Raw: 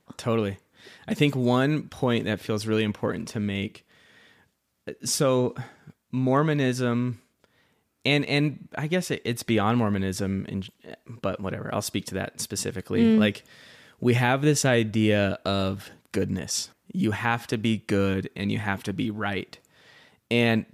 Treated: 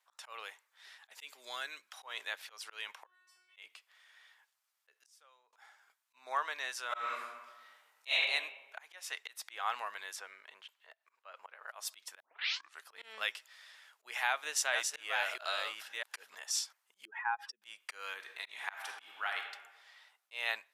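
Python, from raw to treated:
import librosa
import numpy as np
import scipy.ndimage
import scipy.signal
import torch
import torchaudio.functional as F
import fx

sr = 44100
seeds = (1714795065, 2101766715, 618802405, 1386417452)

y = fx.peak_eq(x, sr, hz=900.0, db=-10.5, octaves=1.5, at=(1.2, 1.89))
y = fx.stiff_resonator(y, sr, f0_hz=360.0, decay_s=0.82, stiffness=0.002, at=(3.05, 3.56), fade=0.02)
y = fx.gate_flip(y, sr, shuts_db=-25.0, range_db=-27, at=(4.91, 5.53))
y = fx.reverb_throw(y, sr, start_s=6.87, length_s=1.23, rt60_s=1.2, drr_db=-10.5)
y = fx.bessel_highpass(y, sr, hz=350.0, order=2, at=(8.8, 9.45))
y = fx.bass_treble(y, sr, bass_db=-4, treble_db=-9, at=(10.16, 11.68))
y = fx.reverse_delay(y, sr, ms=650, wet_db=-4, at=(14.08, 16.35))
y = fx.spec_expand(y, sr, power=2.3, at=(17.05, 17.62))
y = fx.reverb_throw(y, sr, start_s=18.15, length_s=1.25, rt60_s=1.1, drr_db=3.0)
y = fx.edit(y, sr, fx.tape_start(start_s=12.2, length_s=0.66), tone=tone)
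y = fx.auto_swell(y, sr, attack_ms=185.0)
y = scipy.signal.sosfilt(scipy.signal.butter(4, 850.0, 'highpass', fs=sr, output='sos'), y)
y = y * librosa.db_to_amplitude(-6.0)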